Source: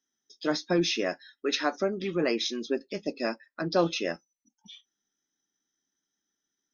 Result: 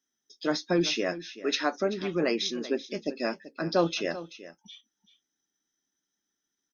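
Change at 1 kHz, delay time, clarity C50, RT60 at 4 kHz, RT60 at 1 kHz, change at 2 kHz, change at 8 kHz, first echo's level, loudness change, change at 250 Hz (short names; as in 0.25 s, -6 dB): 0.0 dB, 0.385 s, none, none, none, 0.0 dB, n/a, -15.0 dB, 0.0 dB, 0.0 dB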